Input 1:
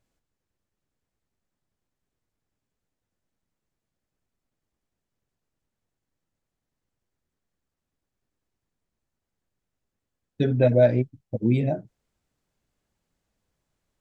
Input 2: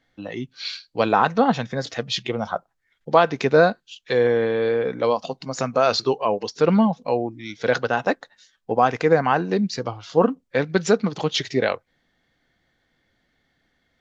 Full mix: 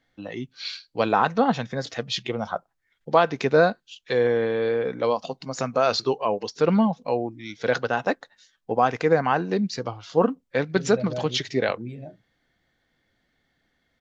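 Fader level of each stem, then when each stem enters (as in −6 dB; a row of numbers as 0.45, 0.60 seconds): −14.5, −2.5 decibels; 0.35, 0.00 seconds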